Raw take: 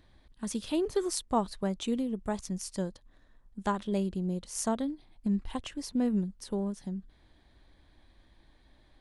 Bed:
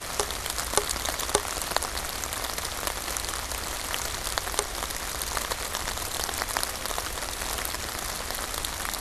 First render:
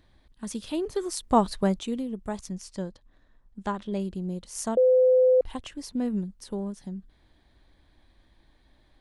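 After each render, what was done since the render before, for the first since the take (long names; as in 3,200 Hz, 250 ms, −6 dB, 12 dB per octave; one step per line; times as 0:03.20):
0:01.23–0:01.79: clip gain +7.5 dB
0:02.52–0:04.00: high-frequency loss of the air 53 metres
0:04.77–0:05.41: beep over 510 Hz −15.5 dBFS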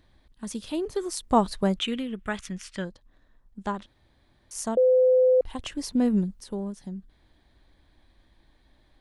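0:01.77–0:02.85: flat-topped bell 2,100 Hz +13.5 dB
0:03.86–0:04.51: fill with room tone
0:05.59–0:06.40: clip gain +5.5 dB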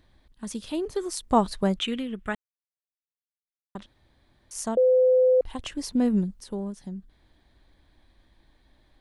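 0:02.35–0:03.75: silence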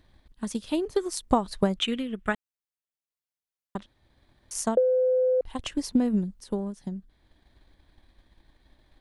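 downward compressor 6 to 1, threshold −21 dBFS, peak gain reduction 7 dB
transient designer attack +5 dB, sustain −3 dB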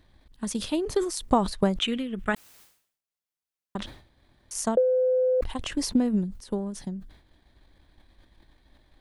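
level that may fall only so fast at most 100 dB per second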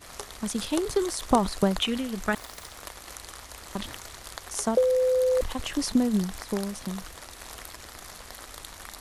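mix in bed −11.5 dB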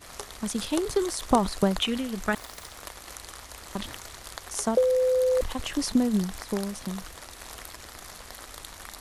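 no processing that can be heard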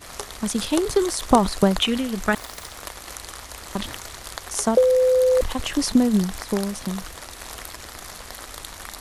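level +5.5 dB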